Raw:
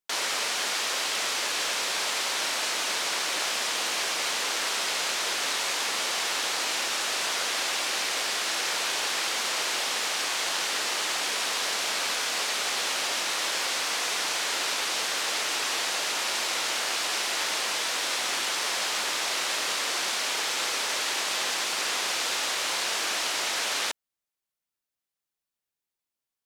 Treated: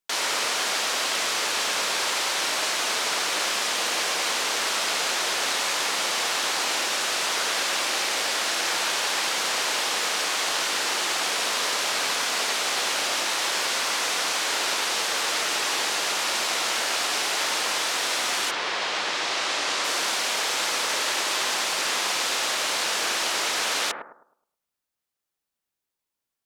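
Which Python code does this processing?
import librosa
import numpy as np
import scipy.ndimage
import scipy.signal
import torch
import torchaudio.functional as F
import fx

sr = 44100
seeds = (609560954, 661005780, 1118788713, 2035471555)

y = fx.lowpass(x, sr, hz=fx.line((18.5, 3500.0), (19.83, 7900.0)), slope=12, at=(18.5, 19.83), fade=0.02)
y = fx.echo_bbd(y, sr, ms=105, stages=1024, feedback_pct=33, wet_db=-3.5)
y = y * 10.0 ** (2.5 / 20.0)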